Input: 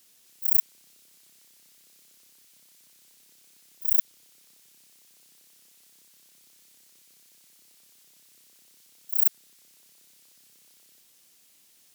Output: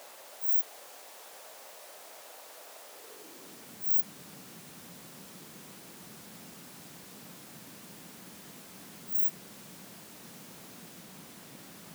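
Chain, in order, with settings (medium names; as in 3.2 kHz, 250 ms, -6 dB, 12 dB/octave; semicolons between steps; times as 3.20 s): frequency-domain pitch shifter +2.5 st; added noise pink -59 dBFS; high-pass sweep 590 Hz -> 180 Hz, 2.83–3.81 s; trim +8 dB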